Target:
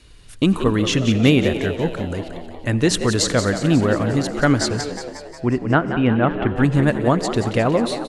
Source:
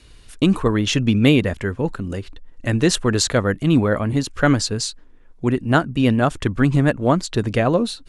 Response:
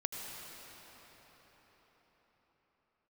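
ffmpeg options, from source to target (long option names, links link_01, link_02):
-filter_complex "[0:a]asettb=1/sr,asplit=3[link_01][link_02][link_03];[link_01]atrim=end=4.814[link_04];[link_02]atrim=start=4.81:end=6.56,asetpts=PTS-STARTPTS,afade=type=in:duration=0.004:curve=qsin,afade=type=out:start_time=1.746:duration=0.004:curve=qsin,lowpass=frequency=2800:width=0.5412,lowpass=frequency=2800:width=1.3066[link_05];[link_03]atrim=start=6.556[link_06];[link_04][link_05]acrossfade=duration=0.004:curve1=hsin:curve2=qsin[link_07];[link_07][link_06]acrossfade=duration=0.004:curve1=qsin:curve2=hsin,asplit=8[link_08][link_09][link_10][link_11][link_12][link_13][link_14][link_15];[link_09]adelay=180,afreqshift=74,volume=-10dB[link_16];[link_10]adelay=360,afreqshift=148,volume=-14.3dB[link_17];[link_11]adelay=540,afreqshift=222,volume=-18.6dB[link_18];[link_12]adelay=720,afreqshift=296,volume=-22.9dB[link_19];[link_13]adelay=900,afreqshift=370,volume=-27.2dB[link_20];[link_14]adelay=1080,afreqshift=444,volume=-31.5dB[link_21];[link_15]adelay=1260,afreqshift=518,volume=-35.8dB[link_22];[link_08][link_16][link_17][link_18][link_19][link_20][link_21][link_22]amix=inputs=8:normalize=0,asplit=2[link_23][link_24];[1:a]atrim=start_sample=2205,afade=type=out:start_time=0.4:duration=0.01,atrim=end_sample=18081[link_25];[link_24][link_25]afir=irnorm=-1:irlink=0,volume=-10.5dB[link_26];[link_23][link_26]amix=inputs=2:normalize=0,volume=-2.5dB"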